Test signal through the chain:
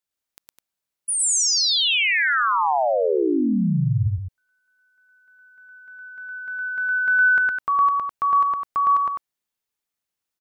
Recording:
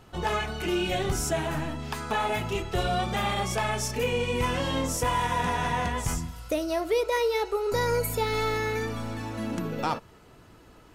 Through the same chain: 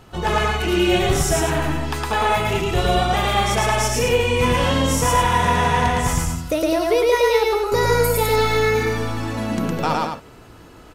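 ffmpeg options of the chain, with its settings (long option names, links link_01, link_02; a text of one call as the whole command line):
ffmpeg -i in.wav -af "aecho=1:1:110.8|207:0.891|0.447,volume=6dB" out.wav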